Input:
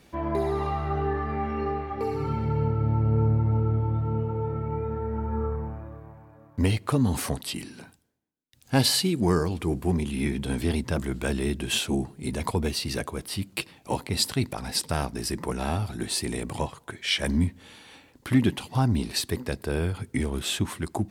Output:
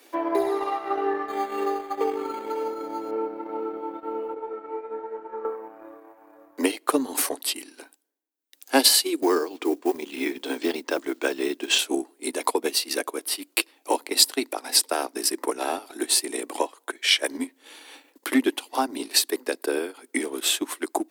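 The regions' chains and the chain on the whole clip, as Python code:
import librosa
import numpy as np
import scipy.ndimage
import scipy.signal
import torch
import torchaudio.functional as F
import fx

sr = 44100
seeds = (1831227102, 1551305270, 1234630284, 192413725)

y = fx.chain(x, sr, fx.high_shelf(hz=3400.0, db=10.0),
    fx.resample_linear(factor=8), at=(1.28, 3.11))
y = fx.chain(y, sr, fx.lowpass(hz=8800.0, slope=24),
    fx.detune_double(cents=19), at=(4.34, 5.45))
y = fx.chain(y, sr, fx.lowpass(hz=7000.0, slope=24),
    fx.quant_float(bits=4), at=(9.22, 11.79))
y = scipy.signal.sosfilt(scipy.signal.butter(12, 270.0, 'highpass', fs=sr, output='sos'), y)
y = fx.high_shelf(y, sr, hz=11000.0, db=11.5)
y = fx.transient(y, sr, attack_db=4, sustain_db=-9)
y = F.gain(torch.from_numpy(y), 3.0).numpy()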